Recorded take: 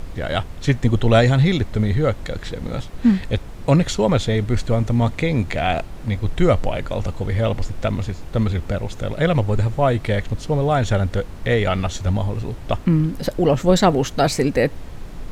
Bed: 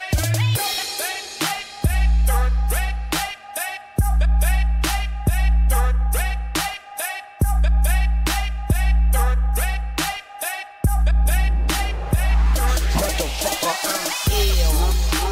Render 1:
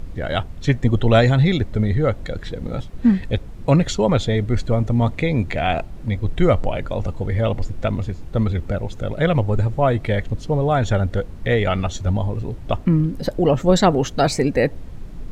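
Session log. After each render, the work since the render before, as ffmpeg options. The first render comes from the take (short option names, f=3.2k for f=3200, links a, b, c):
-af "afftdn=nr=8:nf=-35"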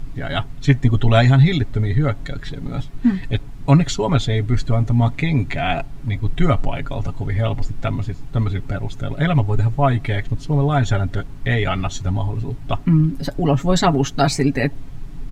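-af "equalizer=f=510:w=3.4:g=-12,aecho=1:1:7.2:0.65"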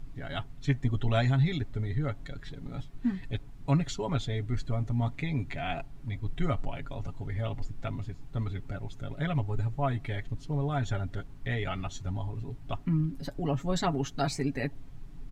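-af "volume=-13dB"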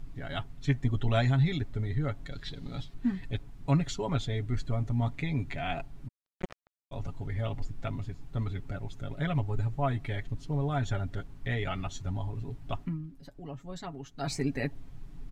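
-filter_complex "[0:a]asettb=1/sr,asplit=3[a][b][c];[a]atrim=end=2.324[d];[b]atrim=start=2.32:end=2.94,asetpts=PTS-STARTPTS,afade=t=in:d=0.004:c=qsin,afade=t=out:st=0.616:d=0.004:c=qsin,equalizer=f=4.1k:t=o:w=1:g=10.5[e];[c]atrim=start=2.936[f];[d][e]acrossfade=d=0.004:c1=hsin:c2=qsin[g];[g][f]acrossfade=d=0.004:c1=qsin:c2=hsin,asplit=3[h][i][j];[h]afade=t=out:st=6.07:d=0.02[k];[i]acrusher=bits=2:mix=0:aa=0.5,afade=t=in:st=6.07:d=0.02,afade=t=out:st=6.91:d=0.02[l];[j]afade=t=in:st=6.91:d=0.02[m];[k][l][m]amix=inputs=3:normalize=0,asplit=3[n][o][p];[n]atrim=end=13.02,asetpts=PTS-STARTPTS,afade=t=out:st=12.83:d=0.19:c=qua:silence=0.251189[q];[o]atrim=start=13.02:end=14.12,asetpts=PTS-STARTPTS,volume=-12dB[r];[p]atrim=start=14.12,asetpts=PTS-STARTPTS,afade=t=in:d=0.19:c=qua:silence=0.251189[s];[q][r][s]concat=n=3:v=0:a=1"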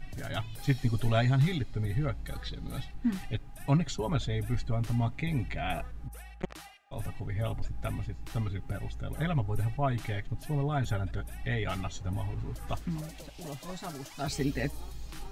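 -filter_complex "[1:a]volume=-25.5dB[a];[0:a][a]amix=inputs=2:normalize=0"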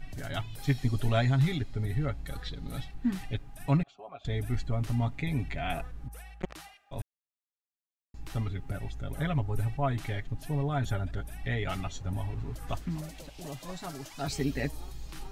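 -filter_complex "[0:a]asettb=1/sr,asplit=3[a][b][c];[a]atrim=end=3.834[d];[b]atrim=start=3.83:end=4.25,asetpts=PTS-STARTPTS,afade=t=in:d=0.004:c=qsin,afade=t=out:st=0.416:d=0.004:c=qsin,asplit=3[e][f][g];[e]bandpass=f=730:t=q:w=8,volume=0dB[h];[f]bandpass=f=1.09k:t=q:w=8,volume=-6dB[i];[g]bandpass=f=2.44k:t=q:w=8,volume=-9dB[j];[h][i][j]amix=inputs=3:normalize=0[k];[c]atrim=start=4.246[l];[d][k]acrossfade=d=0.004:c1=hsin:c2=qsin[m];[m][l]acrossfade=d=0.004:c1=qsin:c2=hsin,asplit=3[n][o][p];[n]atrim=end=7.02,asetpts=PTS-STARTPTS,afade=t=out:st=7.016:d=0.004:c=hsin[q];[o]atrim=start=7.02:end=8.14,asetpts=PTS-STARTPTS,volume=0[r];[p]atrim=start=8.14,asetpts=PTS-STARTPTS,afade=t=in:d=0.004:c=hsin[s];[q][r][s]concat=n=3:v=0:a=1"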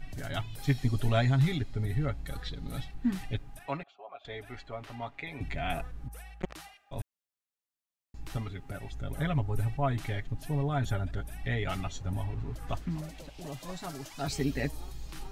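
-filter_complex "[0:a]asettb=1/sr,asplit=3[a][b][c];[a]atrim=end=3.594[d];[b]atrim=start=3.59:end=5.41,asetpts=PTS-STARTPTS,afade=t=in:d=0.004:c=qsin,afade=t=out:st=1.816:d=0.004:c=qsin,acrossover=split=390 4200:gain=0.126 1 0.224[e][f][g];[e][f][g]amix=inputs=3:normalize=0[h];[c]atrim=start=5.406[i];[d][h]acrossfade=d=0.004:c1=hsin:c2=qsin[j];[j][i]acrossfade=d=0.004:c1=qsin:c2=hsin,asettb=1/sr,asplit=3[k][l][m];[k]atrim=end=8.374[n];[l]atrim=start=8.37:end=8.91,asetpts=PTS-STARTPTS,afade=t=in:d=0.004:c=qsin,afade=t=out:st=0.536:d=0.004:c=qsin,lowshelf=f=190:g=-7.5[o];[m]atrim=start=8.906[p];[n][o]acrossfade=d=0.004:c1=hsin:c2=qsin[q];[q][p]acrossfade=d=0.004:c1=qsin:c2=hsin,asettb=1/sr,asplit=3[r][s][t];[r]atrim=end=12.244[u];[s]atrim=start=12.24:end=13.54,asetpts=PTS-STARTPTS,afade=t=in:d=0.004:c=qsin,afade=t=out:st=1.296:d=0.004:c=qsin,highshelf=f=5.5k:g=-5.5[v];[t]atrim=start=13.536[w];[u][v]acrossfade=d=0.004:c1=hsin:c2=qsin[x];[x][w]acrossfade=d=0.004:c1=qsin:c2=hsin"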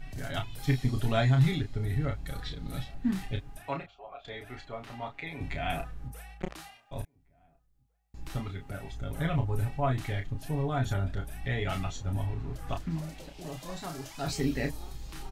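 -filter_complex "[0:a]asplit=2[a][b];[b]adelay=31,volume=-6dB[c];[a][c]amix=inputs=2:normalize=0,asplit=2[d][e];[e]adelay=1749,volume=-30dB,highshelf=f=4k:g=-39.4[f];[d][f]amix=inputs=2:normalize=0"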